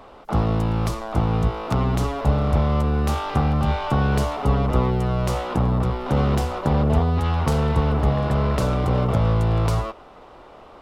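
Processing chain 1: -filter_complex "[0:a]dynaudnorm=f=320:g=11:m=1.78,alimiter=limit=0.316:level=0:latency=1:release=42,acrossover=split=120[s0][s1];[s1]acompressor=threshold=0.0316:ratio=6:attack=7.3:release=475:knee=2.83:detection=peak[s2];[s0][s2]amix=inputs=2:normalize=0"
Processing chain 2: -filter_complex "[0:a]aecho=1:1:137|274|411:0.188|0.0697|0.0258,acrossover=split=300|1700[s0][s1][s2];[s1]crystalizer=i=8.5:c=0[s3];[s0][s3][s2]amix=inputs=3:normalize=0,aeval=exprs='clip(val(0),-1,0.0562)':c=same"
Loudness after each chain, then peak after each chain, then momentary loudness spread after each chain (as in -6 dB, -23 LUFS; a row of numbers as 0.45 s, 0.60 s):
-24.0 LUFS, -23.5 LUFS; -11.5 dBFS, -6.5 dBFS; 5 LU, 4 LU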